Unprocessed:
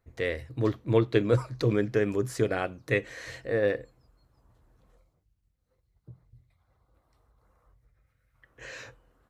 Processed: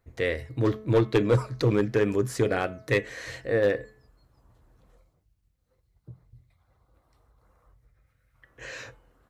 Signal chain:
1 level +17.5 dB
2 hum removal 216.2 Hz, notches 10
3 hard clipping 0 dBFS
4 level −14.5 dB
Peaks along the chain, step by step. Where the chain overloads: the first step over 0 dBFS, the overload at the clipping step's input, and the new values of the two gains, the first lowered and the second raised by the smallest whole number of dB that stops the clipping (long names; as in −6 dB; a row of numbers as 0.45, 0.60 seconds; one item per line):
+8.5, +8.5, 0.0, −14.5 dBFS
step 1, 8.5 dB
step 1 +8.5 dB, step 4 −5.5 dB